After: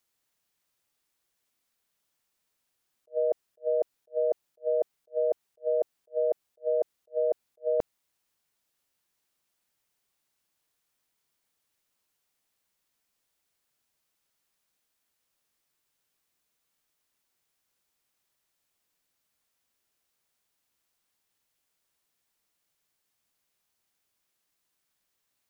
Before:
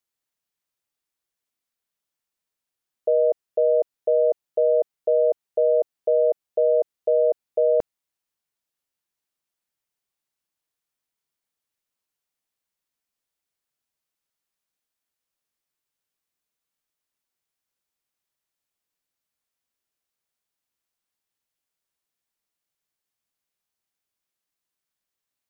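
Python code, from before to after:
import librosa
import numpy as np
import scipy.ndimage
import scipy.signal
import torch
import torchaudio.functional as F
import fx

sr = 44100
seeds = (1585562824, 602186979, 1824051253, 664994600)

y = fx.over_compress(x, sr, threshold_db=-25.0, ratio=-1.0)
y = fx.attack_slew(y, sr, db_per_s=460.0)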